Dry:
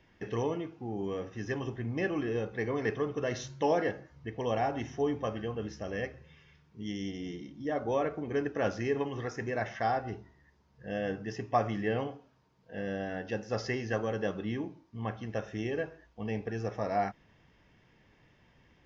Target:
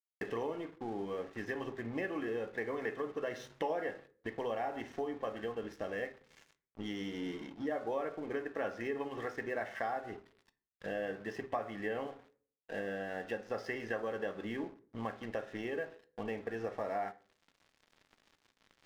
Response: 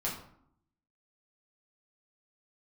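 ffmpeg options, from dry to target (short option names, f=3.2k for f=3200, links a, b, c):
-filter_complex "[0:a]areverse,acompressor=mode=upward:threshold=-50dB:ratio=2.5,areverse,bass=f=250:g=-13,treble=f=4k:g=-13,aeval=exprs='sgn(val(0))*max(abs(val(0))-0.0015,0)':c=same,acompressor=threshold=-51dB:ratio=3,asplit=2[a][b];[1:a]atrim=start_sample=2205,asetrate=70560,aresample=44100[c];[b][c]afir=irnorm=-1:irlink=0,volume=-9.5dB[d];[a][d]amix=inputs=2:normalize=0,volume=10dB"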